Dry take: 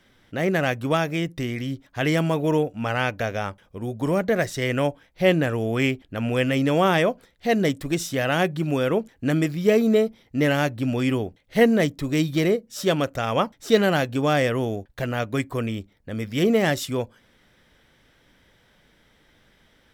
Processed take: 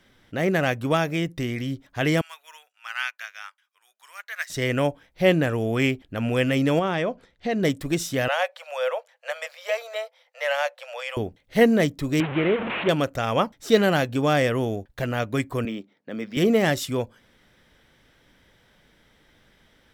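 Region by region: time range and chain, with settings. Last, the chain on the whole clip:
2.21–4.5 HPF 1300 Hz 24 dB/oct + upward expander, over -44 dBFS
6.79–7.63 compressor 2.5:1, threshold -22 dBFS + air absorption 70 m
8.28–11.17 Chebyshev high-pass 500 Hz, order 8 + high shelf 8300 Hz -9.5 dB
12.2–12.89 delta modulation 16 kbps, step -21 dBFS + HPF 190 Hz 6 dB/oct
15.65–16.37 HPF 190 Hz 24 dB/oct + air absorption 75 m + decimation joined by straight lines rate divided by 2×
whole clip: dry

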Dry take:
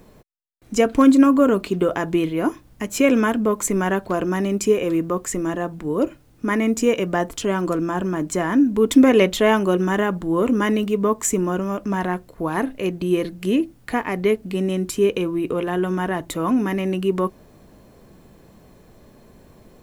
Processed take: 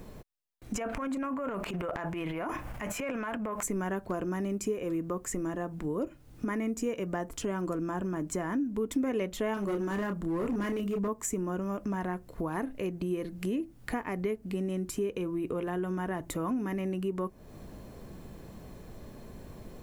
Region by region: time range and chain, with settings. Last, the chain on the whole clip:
0.75–3.63 band shelf 1300 Hz +11.5 dB 2.7 oct + compressor 4:1, threshold -25 dBFS + transient shaper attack -9 dB, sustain +10 dB
9.54–11.08 bell 830 Hz -5.5 dB 0.31 oct + doubler 30 ms -6.5 dB + hard clip -16.5 dBFS
whole clip: low shelf 130 Hz +5.5 dB; compressor 3:1, threshold -34 dBFS; dynamic EQ 3600 Hz, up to -6 dB, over -57 dBFS, Q 1.4

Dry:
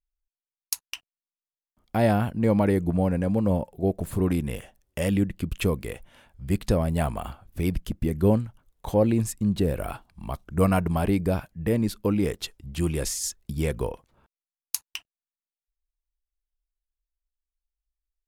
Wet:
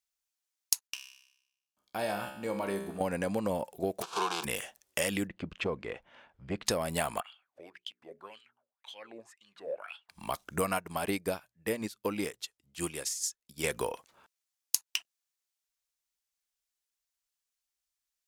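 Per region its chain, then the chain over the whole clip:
0.87–3.01 notch 2000 Hz, Q 6.4 + resonator 66 Hz, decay 0.8 s, mix 80%
4.01–4.43 spectral whitening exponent 0.3 + BPF 260–2300 Hz + fixed phaser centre 390 Hz, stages 8
5.27–6.66 tape spacing loss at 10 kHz 36 dB + core saturation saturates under 190 Hz
7.21–10.09 notches 60/120/180/240/300/360/420 Hz + wah 1.9 Hz 550–3300 Hz, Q 7.6
10.78–13.64 notches 60/120 Hz + upward expander 2.5:1, over -33 dBFS
whole clip: HPF 1100 Hz 6 dB/oct; compressor 4:1, threshold -35 dBFS; bell 6400 Hz +4.5 dB 1.1 oct; gain +7 dB

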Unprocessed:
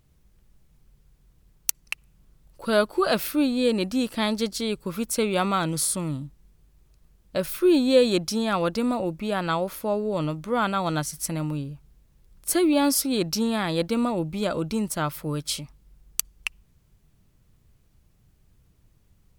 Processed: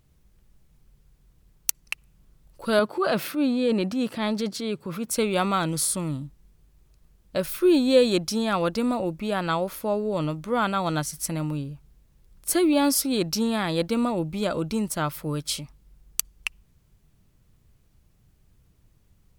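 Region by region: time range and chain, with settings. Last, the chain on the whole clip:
2.79–5.11 HPF 98 Hz 24 dB/oct + high shelf 4300 Hz -10.5 dB + transient shaper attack -5 dB, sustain +5 dB
whole clip: dry

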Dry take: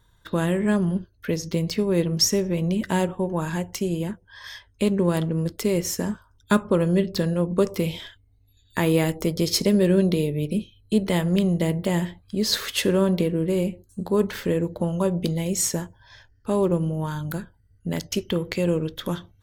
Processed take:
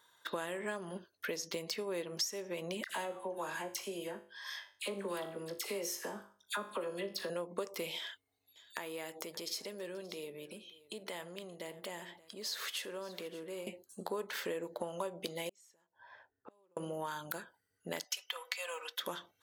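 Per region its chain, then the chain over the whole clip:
2.84–7.3 notch 7300 Hz + resonator 50 Hz, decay 0.41 s, mix 70% + dispersion lows, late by 61 ms, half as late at 1400 Hz
7.98–13.67 compressor 3:1, threshold -38 dBFS + echo 0.577 s -20.5 dB
15.49–16.77 low-pass opened by the level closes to 780 Hz, open at -20 dBFS + compressor 12:1, threshold -29 dBFS + flipped gate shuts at -32 dBFS, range -31 dB
18.04–18.99 HPF 800 Hz 24 dB/oct + comb 4 ms, depth 80%
whole clip: HPF 580 Hz 12 dB/oct; compressor 5:1, threshold -37 dBFS; gain +1 dB

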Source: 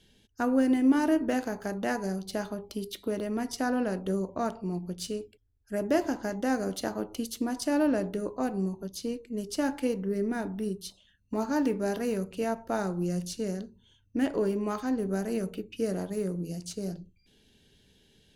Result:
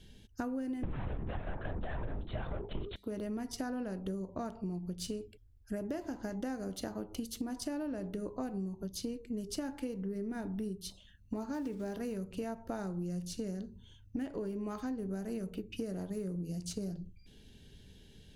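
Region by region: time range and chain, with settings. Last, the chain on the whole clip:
0.83–2.96 overdrive pedal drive 29 dB, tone 2500 Hz, clips at -14 dBFS + LPC vocoder at 8 kHz whisper + three-band squash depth 40%
11.54–11.94 block floating point 5-bit + high shelf 9400 Hz -8 dB
whole clip: low shelf 170 Hz +11 dB; compressor 10:1, threshold -36 dBFS; gain +1 dB

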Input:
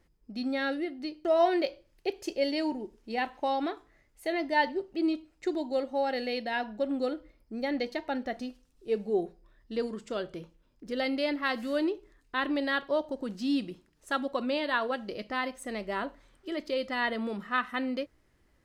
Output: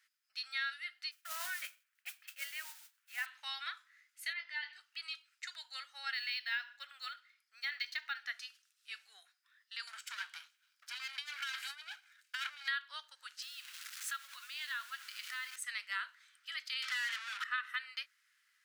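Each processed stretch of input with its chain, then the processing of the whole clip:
1.11–3.26 Gaussian blur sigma 3.6 samples + modulation noise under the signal 23 dB
4.33–4.73 LPF 3700 Hz + compressor 3:1, threshold -35 dBFS + doubler 22 ms -6.5 dB
6.13–8.26 feedback echo 68 ms, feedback 38%, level -23 dB + decimation joined by straight lines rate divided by 2×
9.87–12.68 minimum comb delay 1.3 ms + negative-ratio compressor -36 dBFS, ratio -0.5
13.42–15.56 zero-crossing step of -40.5 dBFS + compressor, threshold -36 dBFS + companded quantiser 6-bit
16.82–17.44 compressor 4:1, threshold -36 dBFS + overdrive pedal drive 31 dB, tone 3000 Hz, clips at -27 dBFS
whole clip: elliptic high-pass 1400 Hz, stop band 80 dB; compressor, threshold -37 dBFS; gain +3.5 dB

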